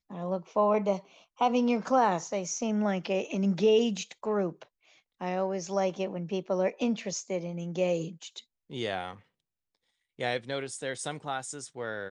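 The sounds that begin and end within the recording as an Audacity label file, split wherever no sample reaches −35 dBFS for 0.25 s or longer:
1.410000	4.630000	sound
5.210000	8.390000	sound
8.720000	9.130000	sound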